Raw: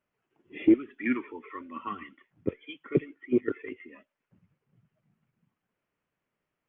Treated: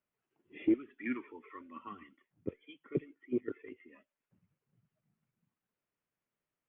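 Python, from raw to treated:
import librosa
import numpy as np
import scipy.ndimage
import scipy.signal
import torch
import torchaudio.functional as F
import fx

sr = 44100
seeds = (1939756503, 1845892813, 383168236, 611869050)

y = fx.peak_eq(x, sr, hz=1900.0, db=-4.0, octaves=2.1, at=(1.79, 3.87))
y = y * 10.0 ** (-8.5 / 20.0)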